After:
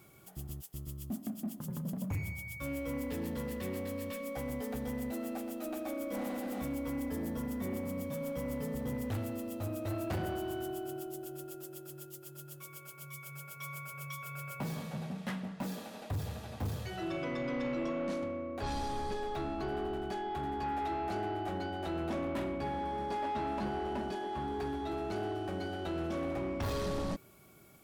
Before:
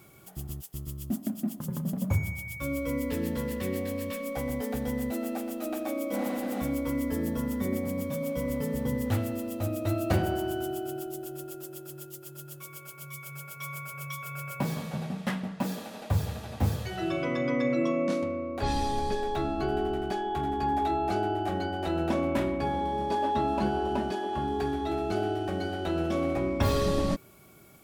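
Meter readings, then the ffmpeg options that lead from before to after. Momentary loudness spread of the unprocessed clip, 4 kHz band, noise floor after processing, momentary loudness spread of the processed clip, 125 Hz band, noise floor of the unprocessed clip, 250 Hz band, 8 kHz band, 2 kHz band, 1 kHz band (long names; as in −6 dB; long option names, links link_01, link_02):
12 LU, −7.0 dB, −51 dBFS, 9 LU, −7.5 dB, −47 dBFS, −7.0 dB, −6.0 dB, −6.0 dB, −7.0 dB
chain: -af "asoftclip=type=tanh:threshold=-26dB,volume=-4.5dB"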